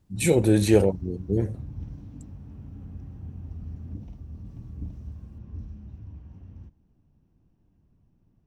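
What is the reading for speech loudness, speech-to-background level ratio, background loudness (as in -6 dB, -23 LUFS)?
-23.0 LUFS, 18.0 dB, -41.0 LUFS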